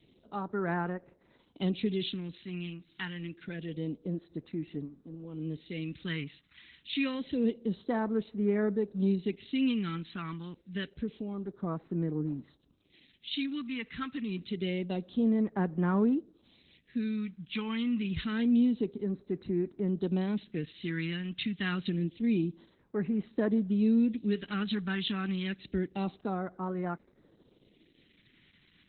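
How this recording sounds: phasing stages 2, 0.27 Hz, lowest notch 540–3100 Hz; Opus

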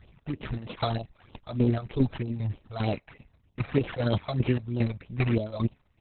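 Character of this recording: aliases and images of a low sample rate 4600 Hz, jitter 0%; phasing stages 12, 3.2 Hz, lowest notch 290–1800 Hz; chopped level 2.5 Hz, depth 60%, duty 45%; Opus

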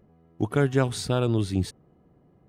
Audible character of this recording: noise floor -61 dBFS; spectral tilt -6.5 dB/oct

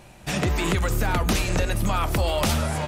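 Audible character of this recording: noise floor -48 dBFS; spectral tilt -4.5 dB/oct

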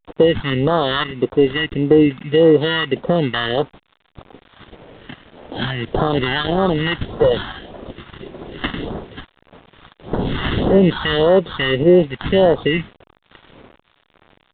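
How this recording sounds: aliases and images of a low sample rate 2400 Hz, jitter 0%; phasing stages 2, 1.7 Hz, lowest notch 470–2400 Hz; a quantiser's noise floor 8-bit, dither none; A-law

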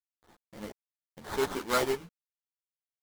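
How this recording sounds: aliases and images of a low sample rate 2600 Hz, jitter 20%; tremolo saw down 0.86 Hz, depth 75%; a quantiser's noise floor 10-bit, dither none; a shimmering, thickened sound

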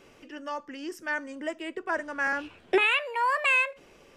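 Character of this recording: noise floor -57 dBFS; spectral tilt +1.5 dB/oct

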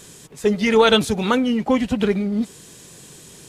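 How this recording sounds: noise floor -44 dBFS; spectral tilt -3.5 dB/oct

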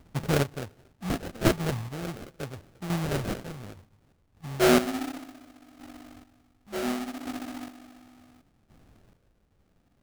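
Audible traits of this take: phasing stages 2, 0.51 Hz, lowest notch 340–1000 Hz; chopped level 0.69 Hz, depth 65%, duty 30%; aliases and images of a low sample rate 1000 Hz, jitter 20%

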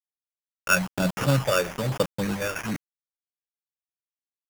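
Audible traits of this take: a quantiser's noise floor 6-bit, dither none; phasing stages 6, 1.1 Hz, lowest notch 210–3200 Hz; aliases and images of a low sample rate 4100 Hz, jitter 0%

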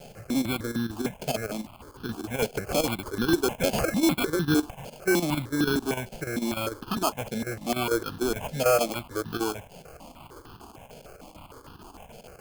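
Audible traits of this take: a quantiser's noise floor 8-bit, dither triangular; chopped level 6.7 Hz, depth 65%, duty 80%; aliases and images of a low sample rate 1900 Hz, jitter 0%; notches that jump at a steady rate 6.6 Hz 310–2200 Hz

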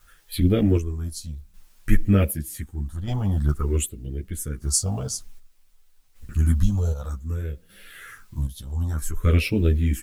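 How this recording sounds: phasing stages 4, 0.55 Hz, lowest notch 330–1100 Hz; a quantiser's noise floor 10-bit, dither triangular; chopped level 0.65 Hz, depth 60%, duty 50%; a shimmering, thickened sound

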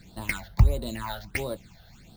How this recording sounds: aliases and images of a low sample rate 11000 Hz, jitter 0%; phasing stages 8, 1.5 Hz, lowest notch 300–2200 Hz

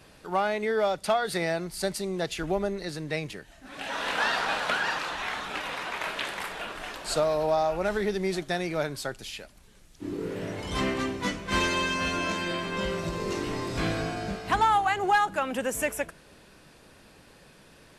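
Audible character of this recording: noise floor -55 dBFS; spectral tilt -4.0 dB/oct

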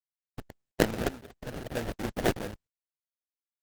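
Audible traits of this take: a quantiser's noise floor 6-bit, dither none; tremolo triangle 0.59 Hz, depth 90%; aliases and images of a low sample rate 1100 Hz, jitter 20%; Opus

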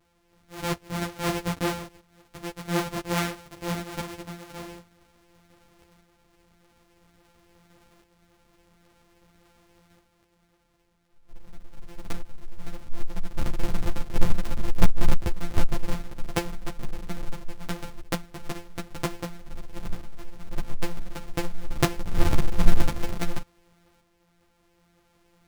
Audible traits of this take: a buzz of ramps at a fixed pitch in blocks of 256 samples; tremolo saw up 0.5 Hz, depth 50%; a shimmering, thickened sound

